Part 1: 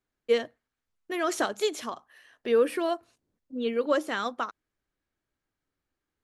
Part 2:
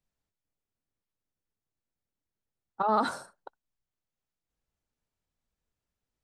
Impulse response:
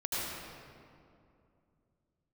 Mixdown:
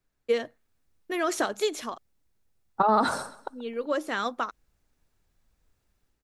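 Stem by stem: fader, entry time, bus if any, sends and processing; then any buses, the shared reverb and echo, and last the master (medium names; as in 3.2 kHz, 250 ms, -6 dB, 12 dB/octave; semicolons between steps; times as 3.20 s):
+1.5 dB, 0.00 s, muted 1.98–3.20 s, no send, no echo send, auto duck -10 dB, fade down 1.05 s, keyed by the second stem
-0.5 dB, 0.00 s, no send, echo send -19 dB, bass shelf 74 Hz +10 dB; level rider gain up to 11 dB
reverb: none
echo: feedback delay 131 ms, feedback 28%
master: band-stop 3.1 kHz, Q 25; compression 2.5:1, threshold -21 dBFS, peak gain reduction 7 dB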